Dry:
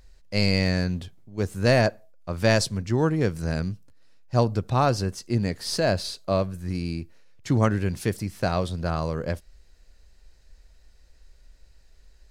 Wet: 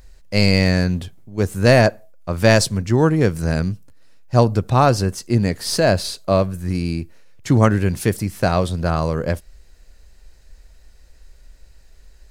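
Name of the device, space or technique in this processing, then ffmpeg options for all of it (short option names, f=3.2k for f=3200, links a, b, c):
exciter from parts: -filter_complex "[0:a]asplit=2[a][b];[b]highpass=5k,asoftclip=type=tanh:threshold=-25dB,highpass=f=4.8k:p=1,volume=-4.5dB[c];[a][c]amix=inputs=2:normalize=0,volume=7dB"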